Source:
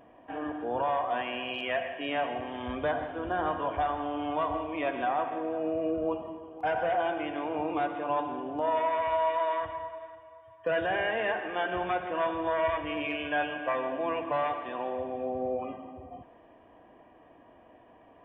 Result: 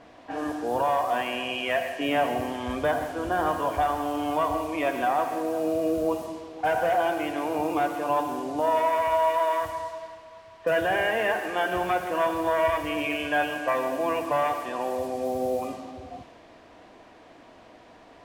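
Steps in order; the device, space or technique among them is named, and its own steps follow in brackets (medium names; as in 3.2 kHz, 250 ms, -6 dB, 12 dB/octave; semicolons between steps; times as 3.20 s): 1.99–2.53 s: bass shelf 460 Hz +5.5 dB; cassette deck with a dynamic noise filter (white noise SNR 22 dB; level-controlled noise filter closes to 2 kHz, open at -28.5 dBFS); trim +4.5 dB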